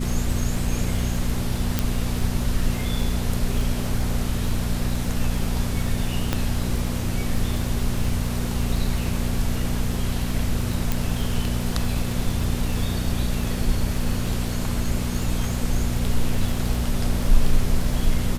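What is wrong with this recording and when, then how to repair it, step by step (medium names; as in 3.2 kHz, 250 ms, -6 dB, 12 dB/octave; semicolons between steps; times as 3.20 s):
crackle 34 per s -27 dBFS
hum 60 Hz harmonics 4 -27 dBFS
1.79 s: pop
6.33 s: pop -7 dBFS
10.92 s: pop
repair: de-click; de-hum 60 Hz, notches 4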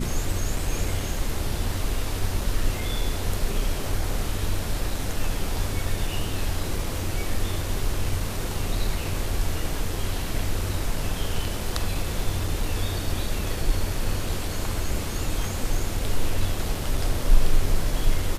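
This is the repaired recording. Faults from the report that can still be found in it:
nothing left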